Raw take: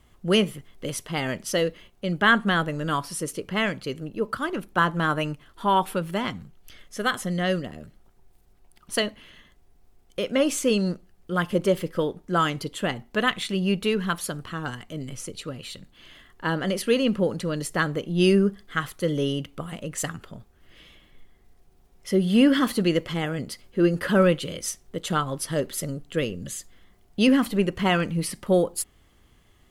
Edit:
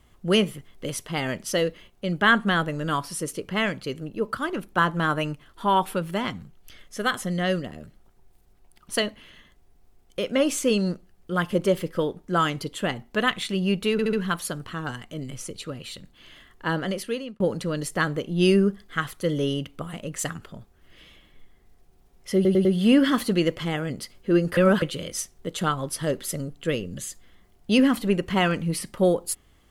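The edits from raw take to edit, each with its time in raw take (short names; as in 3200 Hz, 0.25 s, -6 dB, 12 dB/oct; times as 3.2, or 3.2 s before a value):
13.92 stutter 0.07 s, 4 plays
16.55–17.19 fade out
22.14 stutter 0.10 s, 4 plays
24.06–24.31 reverse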